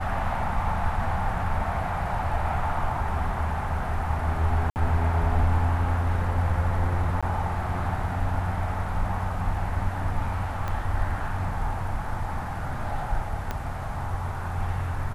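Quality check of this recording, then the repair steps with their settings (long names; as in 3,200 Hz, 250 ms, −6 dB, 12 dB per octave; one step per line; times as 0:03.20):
0:04.70–0:04.76: drop-out 59 ms
0:07.21–0:07.23: drop-out 16 ms
0:10.68: click −18 dBFS
0:13.51: click −16 dBFS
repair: click removal
repair the gap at 0:04.70, 59 ms
repair the gap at 0:07.21, 16 ms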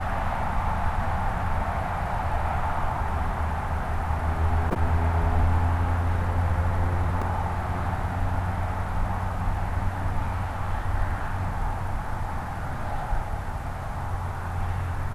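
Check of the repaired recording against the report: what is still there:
0:10.68: click
0:13.51: click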